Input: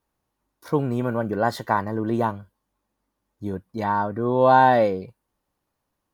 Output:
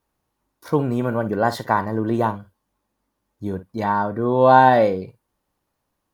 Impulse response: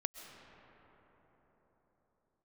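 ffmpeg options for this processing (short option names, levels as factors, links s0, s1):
-filter_complex "[0:a]asplit=2[s0][s1];[1:a]atrim=start_sample=2205,atrim=end_sample=3969,adelay=54[s2];[s1][s2]afir=irnorm=-1:irlink=0,volume=0.224[s3];[s0][s3]amix=inputs=2:normalize=0,volume=1.33"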